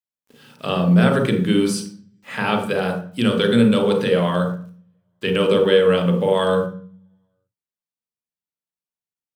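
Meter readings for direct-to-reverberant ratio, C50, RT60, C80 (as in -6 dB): 2.5 dB, 6.0 dB, 0.45 s, 10.5 dB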